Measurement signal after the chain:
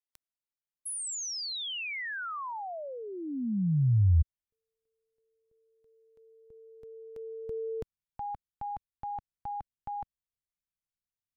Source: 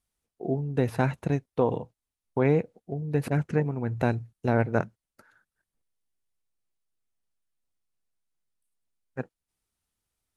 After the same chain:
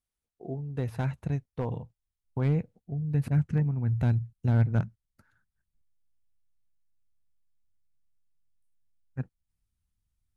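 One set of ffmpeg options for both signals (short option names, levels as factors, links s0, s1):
-af "asoftclip=type=hard:threshold=0.211,asubboost=boost=9:cutoff=150,volume=0.398"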